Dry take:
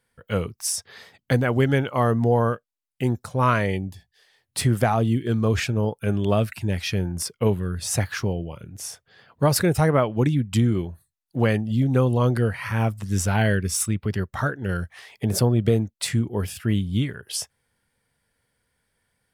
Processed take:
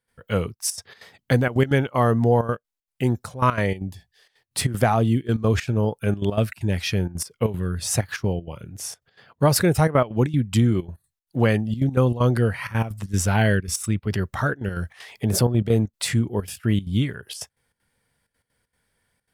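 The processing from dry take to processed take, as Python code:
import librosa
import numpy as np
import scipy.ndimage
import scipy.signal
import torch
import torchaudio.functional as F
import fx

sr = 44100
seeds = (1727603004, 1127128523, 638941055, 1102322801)

y = fx.step_gate(x, sr, bpm=193, pattern='.xxxxxx.x.xx', floor_db=-12.0, edge_ms=4.5)
y = fx.transient(y, sr, attack_db=-1, sustain_db=5, at=(13.97, 16.15), fade=0.02)
y = y * 10.0 ** (1.5 / 20.0)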